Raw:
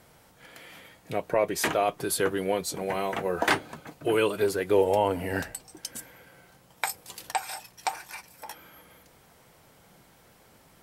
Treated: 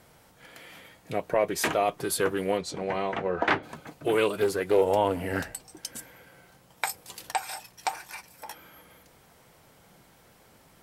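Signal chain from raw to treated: 2.57–3.62 s: low-pass 6.2 kHz -> 2.7 kHz 12 dB/octave; loudspeaker Doppler distortion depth 0.16 ms

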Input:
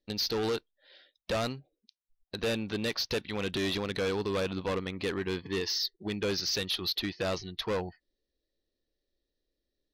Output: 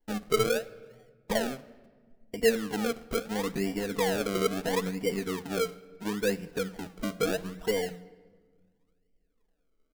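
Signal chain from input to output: steep low-pass 880 Hz 36 dB/octave; hum notches 60/120/180 Hz; comb 4.3 ms, depth 74%; in parallel at 0 dB: compression, threshold -42 dBFS, peak gain reduction 17 dB; on the sum: feedback comb 150 Hz, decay 0.24 s, harmonics odd, mix 50%; flange 1.3 Hz, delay 2.4 ms, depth 4.6 ms, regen +49%; decimation with a swept rate 34×, swing 100% 0.74 Hz; on a send at -15.5 dB: reverberation RT60 1.5 s, pre-delay 6 ms; on the sum: trim +8.5 dB

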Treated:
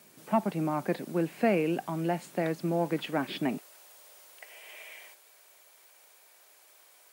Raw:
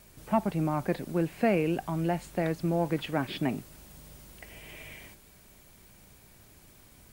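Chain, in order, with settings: high-pass 170 Hz 24 dB/octave, from 3.58 s 510 Hz

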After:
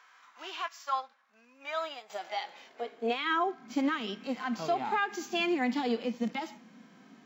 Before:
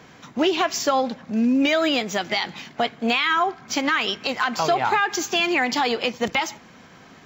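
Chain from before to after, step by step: high-pass sweep 1.2 kHz -> 220 Hz, 1.53–3.74 s; harmonic-percussive split percussive -16 dB; 0.68–2.10 s: upward expansion 1.5:1, over -40 dBFS; trim -8.5 dB

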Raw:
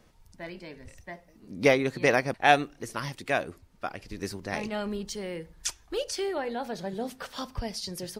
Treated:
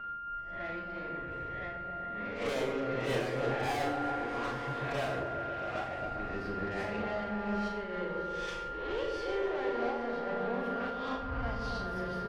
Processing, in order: reverse spectral sustain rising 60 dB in 0.40 s; whistle 1.4 kHz -36 dBFS; distance through air 390 m; valve stage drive 30 dB, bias 0.6; on a send at -6.5 dB: reverberation RT60 0.40 s, pre-delay 27 ms; on the sum: dynamic bell 180 Hz, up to -6 dB, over -50 dBFS, Q 0.75; in parallel at +0.5 dB: peak limiter -32 dBFS, peak gain reduction 9 dB; on the sum: time stretch by phase-locked vocoder 1.5×; doubling 38 ms -5 dB; delay with an opening low-pass 136 ms, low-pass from 400 Hz, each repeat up 1 oct, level 0 dB; random flutter of the level, depth 50%; trim -3.5 dB

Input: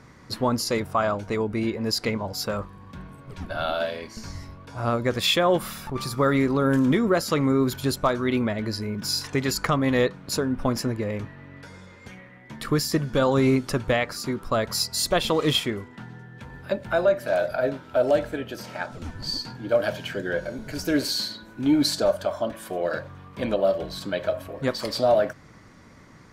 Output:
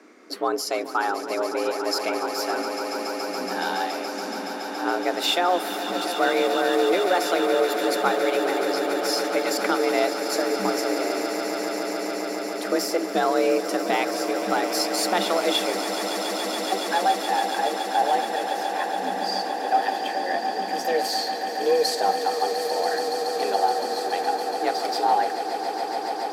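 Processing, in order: frequency shift +180 Hz; echo with a slow build-up 141 ms, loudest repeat 8, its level -12 dB; trim -1.5 dB

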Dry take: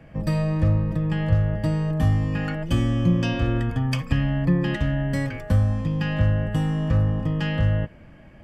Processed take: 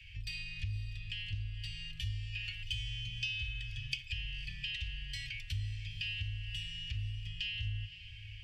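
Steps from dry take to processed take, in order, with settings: Chebyshev band-stop 100–2600 Hz, order 4; three-band isolator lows -15 dB, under 450 Hz, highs -18 dB, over 4.7 kHz; compression 2.5:1, threshold -56 dBFS, peak gain reduction 16.5 dB; on a send: echo that smears into a reverb 538 ms, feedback 48%, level -13 dB; on the sum: trim +13.5 dB

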